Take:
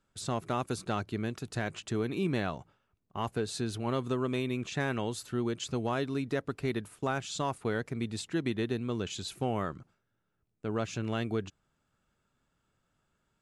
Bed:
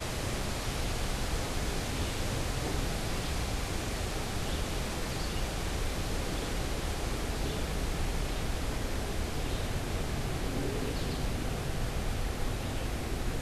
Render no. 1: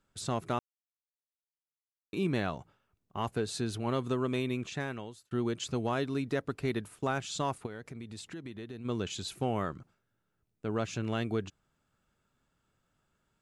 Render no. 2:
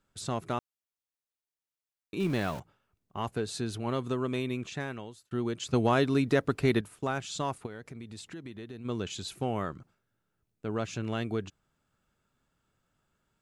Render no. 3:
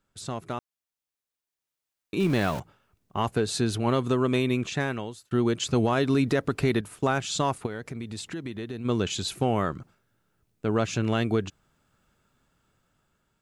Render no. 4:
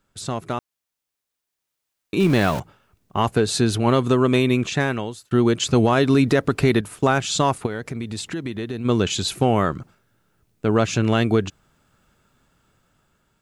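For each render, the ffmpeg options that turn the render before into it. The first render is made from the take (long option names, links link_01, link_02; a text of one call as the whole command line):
ffmpeg -i in.wav -filter_complex "[0:a]asplit=3[link_01][link_02][link_03];[link_01]afade=type=out:start_time=7.65:duration=0.02[link_04];[link_02]acompressor=threshold=-41dB:ratio=4:attack=3.2:release=140:knee=1:detection=peak,afade=type=in:start_time=7.65:duration=0.02,afade=type=out:start_time=8.84:duration=0.02[link_05];[link_03]afade=type=in:start_time=8.84:duration=0.02[link_06];[link_04][link_05][link_06]amix=inputs=3:normalize=0,asplit=4[link_07][link_08][link_09][link_10];[link_07]atrim=end=0.59,asetpts=PTS-STARTPTS,afade=type=out:start_time=0.586:duration=0.004:curve=hsin[link_11];[link_08]atrim=start=0.59:end=2.13,asetpts=PTS-STARTPTS,volume=0[link_12];[link_09]atrim=start=2.13:end=5.31,asetpts=PTS-STARTPTS,afade=type=in:duration=0.004:curve=hsin,afade=type=out:start_time=2.39:duration=0.79[link_13];[link_10]atrim=start=5.31,asetpts=PTS-STARTPTS,afade=type=in:duration=0.004:curve=hsin[link_14];[link_11][link_12][link_13][link_14]concat=n=4:v=0:a=1" out.wav
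ffmpeg -i in.wav -filter_complex "[0:a]asettb=1/sr,asplit=3[link_01][link_02][link_03];[link_01]atrim=end=2.204[link_04];[link_02]atrim=start=2.2:end=2.6,asetpts=PTS-STARTPTS,afade=type=in:duration=0.004:curve=qsin,afade=type=out:start_time=0.396:duration=0.004:curve=qsin,aeval=exprs='val(0)+0.5*0.0119*sgn(val(0))':channel_layout=same[link_05];[link_03]atrim=start=2.596[link_06];[link_04][link_05]acrossfade=duration=0.004:curve1=hsin:curve2=qsin[link_07];[link_07][link_06]acrossfade=duration=0.004:curve1=qsin:curve2=hsin,asettb=1/sr,asplit=3[link_08][link_09][link_10];[link_08]atrim=end=5.734[link_11];[link_09]atrim=start=5.73:end=6.81,asetpts=PTS-STARTPTS,afade=type=in:duration=0.004:curve=qsin,afade=type=out:start_time=1.076:duration=0.004:curve=qsin,acontrast=74[link_12];[link_10]atrim=start=6.806[link_13];[link_11][link_12]acrossfade=duration=0.004:curve1=hsin:curve2=qsin[link_14];[link_14][link_13]acrossfade=duration=0.004:curve1=qsin:curve2=hsin" out.wav
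ffmpeg -i in.wav -af "alimiter=limit=-22.5dB:level=0:latency=1:release=130,dynaudnorm=framelen=670:gausssize=5:maxgain=8dB" out.wav
ffmpeg -i in.wav -af "volume=6.5dB" out.wav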